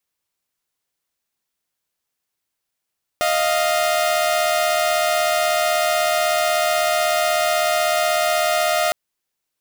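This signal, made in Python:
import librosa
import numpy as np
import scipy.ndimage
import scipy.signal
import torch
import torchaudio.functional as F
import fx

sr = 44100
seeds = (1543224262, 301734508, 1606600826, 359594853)

y = fx.chord(sr, length_s=5.71, notes=(75, 77), wave='saw', level_db=-17.0)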